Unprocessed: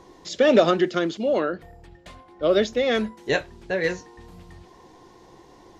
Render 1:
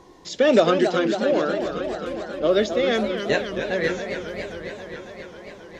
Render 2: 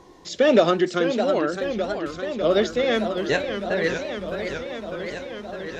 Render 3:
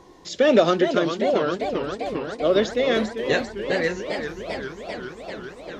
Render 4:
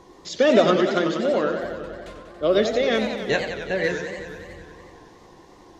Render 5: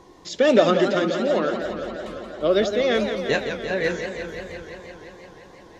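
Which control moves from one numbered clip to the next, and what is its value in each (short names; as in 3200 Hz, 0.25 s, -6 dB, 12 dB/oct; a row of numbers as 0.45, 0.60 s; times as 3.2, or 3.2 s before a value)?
warbling echo, time: 270, 607, 399, 92, 172 ms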